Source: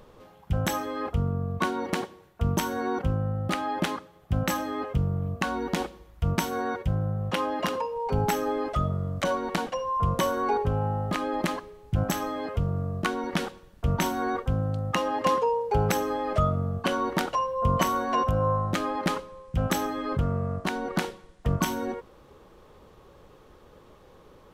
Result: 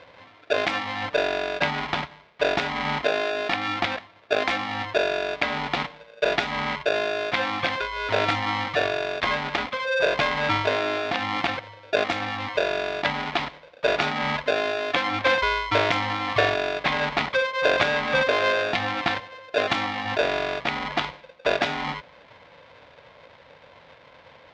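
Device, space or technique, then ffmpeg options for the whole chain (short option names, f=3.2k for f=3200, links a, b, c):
ring modulator pedal into a guitar cabinet: -af "aeval=exprs='val(0)*sgn(sin(2*PI*520*n/s))':c=same,highpass=92,equalizer=f=200:t=q:w=4:g=-4,equalizer=f=360:t=q:w=4:g=-8,equalizer=f=540:t=q:w=4:g=4,equalizer=f=2.2k:t=q:w=4:g=6,equalizer=f=3.5k:t=q:w=4:g=4,lowpass=f=4.5k:w=0.5412,lowpass=f=4.5k:w=1.3066,volume=2dB"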